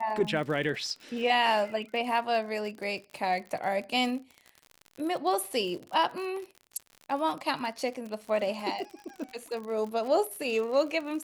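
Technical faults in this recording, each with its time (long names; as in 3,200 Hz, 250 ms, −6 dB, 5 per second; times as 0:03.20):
surface crackle 55 per second −36 dBFS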